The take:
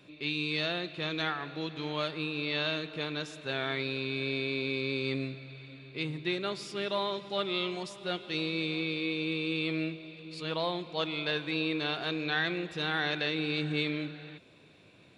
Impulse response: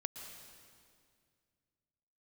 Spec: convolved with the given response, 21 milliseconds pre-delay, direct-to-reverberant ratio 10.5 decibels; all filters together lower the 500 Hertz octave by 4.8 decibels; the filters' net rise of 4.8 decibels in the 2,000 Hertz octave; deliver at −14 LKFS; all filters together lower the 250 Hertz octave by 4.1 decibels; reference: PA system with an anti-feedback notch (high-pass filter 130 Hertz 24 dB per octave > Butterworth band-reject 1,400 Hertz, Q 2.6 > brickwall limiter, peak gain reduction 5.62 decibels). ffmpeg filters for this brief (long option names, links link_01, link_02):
-filter_complex "[0:a]equalizer=frequency=250:width_type=o:gain=-3.5,equalizer=frequency=500:width_type=o:gain=-5.5,equalizer=frequency=2000:width_type=o:gain=8,asplit=2[link_01][link_02];[1:a]atrim=start_sample=2205,adelay=21[link_03];[link_02][link_03]afir=irnorm=-1:irlink=0,volume=-9dB[link_04];[link_01][link_04]amix=inputs=2:normalize=0,highpass=frequency=130:width=0.5412,highpass=frequency=130:width=1.3066,asuperstop=centerf=1400:order=8:qfactor=2.6,volume=18dB,alimiter=limit=-3.5dB:level=0:latency=1"